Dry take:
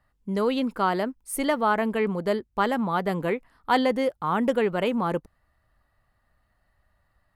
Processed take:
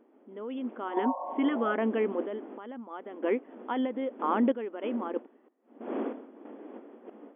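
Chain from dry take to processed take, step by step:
wind on the microphone 470 Hz −38 dBFS
low-shelf EQ 450 Hz +11.5 dB
brickwall limiter −13 dBFS, peak gain reduction 8.5 dB
healed spectral selection 0:00.91–0:01.72, 520–1,100 Hz both
sample-and-hold tremolo 3.1 Hz, depth 85%
linear-phase brick-wall band-pass 220–3,500 Hz
level −3 dB

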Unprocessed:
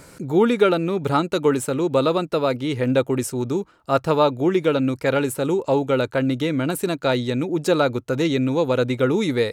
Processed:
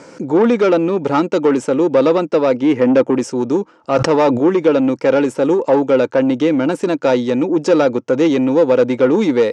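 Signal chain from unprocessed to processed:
0:02.62–0:03.15: octave-band graphic EQ 250/2,000/4,000 Hz +4/+5/−6 dB
soft clipping −16.5 dBFS, distortion −13 dB
loudspeaker in its box 190–6,600 Hz, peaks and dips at 220 Hz +5 dB, 310 Hz +6 dB, 510 Hz +7 dB, 900 Hz +5 dB, 4,000 Hz −7 dB, 5,700 Hz +4 dB
0:03.76–0:04.50: level that may fall only so fast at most 64 dB per second
level +5 dB

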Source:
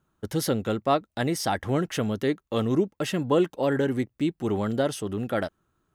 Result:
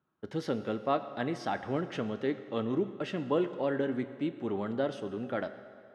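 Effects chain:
band-pass filter 150–3,300 Hz
convolution reverb RT60 2.4 s, pre-delay 6 ms, DRR 9.5 dB
level −6.5 dB

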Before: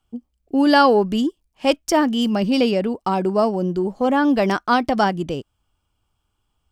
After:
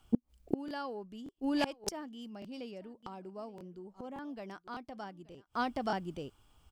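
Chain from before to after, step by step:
single-tap delay 877 ms −22.5 dB
gate with flip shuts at −23 dBFS, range −33 dB
regular buffer underruns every 0.58 s, samples 1,024, repeat, from 0:00.66
level +6.5 dB

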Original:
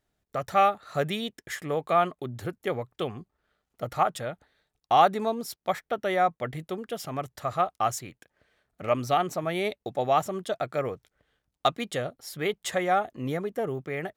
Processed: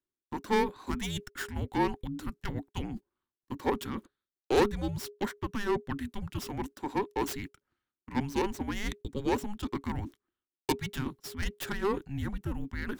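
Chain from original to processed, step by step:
stylus tracing distortion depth 0.19 ms
noise gate −44 dBFS, range −24 dB
notch filter 550 Hz, Q 12
reversed playback
upward compression, threshold −23 dBFS
reversed playback
frequency shifter −380 Hz
speed change +9%
level −5.5 dB

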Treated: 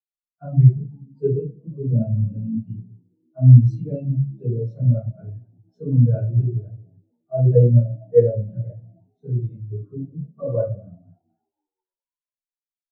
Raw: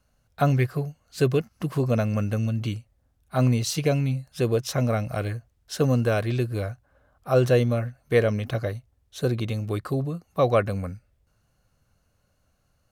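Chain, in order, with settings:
in parallel at −10 dB: hard clipping −16.5 dBFS, distortion −15 dB
on the sum: echo with shifted repeats 243 ms, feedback 64%, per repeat +69 Hz, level −13.5 dB
convolution reverb RT60 0.65 s, pre-delay 3 ms, DRR −12 dB
every bin expanded away from the loudest bin 2.5 to 1
level −8.5 dB

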